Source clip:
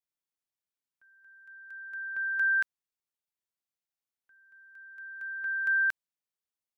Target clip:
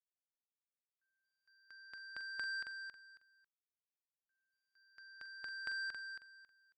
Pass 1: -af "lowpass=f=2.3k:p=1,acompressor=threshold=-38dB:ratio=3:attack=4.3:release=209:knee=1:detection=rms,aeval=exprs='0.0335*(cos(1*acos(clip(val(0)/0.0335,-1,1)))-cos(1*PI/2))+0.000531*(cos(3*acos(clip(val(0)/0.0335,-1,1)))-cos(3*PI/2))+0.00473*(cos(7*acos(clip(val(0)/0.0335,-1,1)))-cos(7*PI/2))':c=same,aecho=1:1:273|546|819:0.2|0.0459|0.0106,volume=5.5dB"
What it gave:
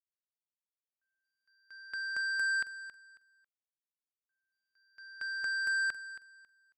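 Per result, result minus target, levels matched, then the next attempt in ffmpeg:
compressor: peak gain reduction -5 dB; echo-to-direct -7 dB
-af "lowpass=f=2.3k:p=1,acompressor=threshold=-45.5dB:ratio=3:attack=4.3:release=209:knee=1:detection=rms,aeval=exprs='0.0335*(cos(1*acos(clip(val(0)/0.0335,-1,1)))-cos(1*PI/2))+0.000531*(cos(3*acos(clip(val(0)/0.0335,-1,1)))-cos(3*PI/2))+0.00473*(cos(7*acos(clip(val(0)/0.0335,-1,1)))-cos(7*PI/2))':c=same,aecho=1:1:273|546|819:0.2|0.0459|0.0106,volume=5.5dB"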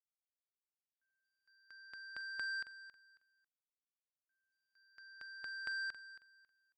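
echo-to-direct -7 dB
-af "lowpass=f=2.3k:p=1,acompressor=threshold=-45.5dB:ratio=3:attack=4.3:release=209:knee=1:detection=rms,aeval=exprs='0.0335*(cos(1*acos(clip(val(0)/0.0335,-1,1)))-cos(1*PI/2))+0.000531*(cos(3*acos(clip(val(0)/0.0335,-1,1)))-cos(3*PI/2))+0.00473*(cos(7*acos(clip(val(0)/0.0335,-1,1)))-cos(7*PI/2))':c=same,aecho=1:1:273|546|819:0.447|0.103|0.0236,volume=5.5dB"

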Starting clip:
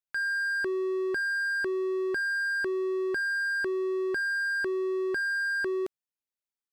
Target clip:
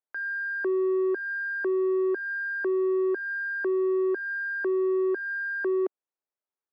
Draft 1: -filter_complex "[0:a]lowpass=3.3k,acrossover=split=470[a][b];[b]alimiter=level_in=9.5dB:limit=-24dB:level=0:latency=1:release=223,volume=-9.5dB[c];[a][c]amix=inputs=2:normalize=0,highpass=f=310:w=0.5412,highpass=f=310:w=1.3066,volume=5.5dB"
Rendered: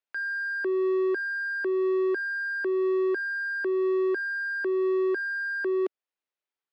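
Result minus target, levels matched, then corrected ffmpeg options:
4000 Hz band +12.0 dB
-filter_complex "[0:a]lowpass=1.2k,acrossover=split=470[a][b];[b]alimiter=level_in=9.5dB:limit=-24dB:level=0:latency=1:release=223,volume=-9.5dB[c];[a][c]amix=inputs=2:normalize=0,highpass=f=310:w=0.5412,highpass=f=310:w=1.3066,volume=5.5dB"

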